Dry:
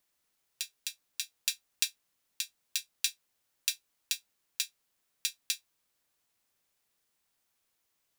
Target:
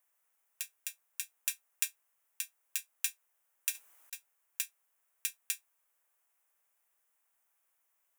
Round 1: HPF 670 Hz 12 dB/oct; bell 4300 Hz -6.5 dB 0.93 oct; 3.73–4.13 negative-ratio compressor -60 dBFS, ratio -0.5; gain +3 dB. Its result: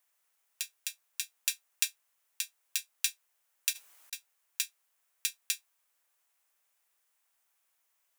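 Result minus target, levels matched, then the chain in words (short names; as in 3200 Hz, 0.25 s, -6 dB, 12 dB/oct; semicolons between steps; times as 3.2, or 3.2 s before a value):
4000 Hz band +5.0 dB
HPF 670 Hz 12 dB/oct; bell 4300 Hz -17.5 dB 0.93 oct; 3.73–4.13 negative-ratio compressor -60 dBFS, ratio -0.5; gain +3 dB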